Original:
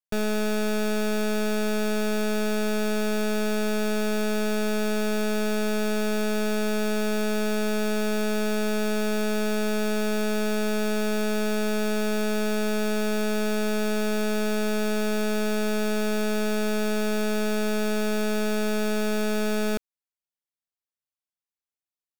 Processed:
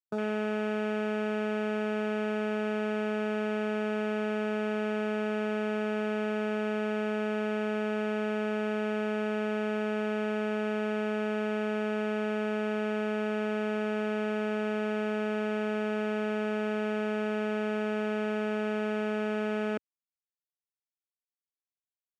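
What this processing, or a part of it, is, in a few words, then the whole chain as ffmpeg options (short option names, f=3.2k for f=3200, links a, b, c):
over-cleaned archive recording: -af "highpass=180,lowpass=7.8k,afwtdn=0.0158,volume=-3.5dB"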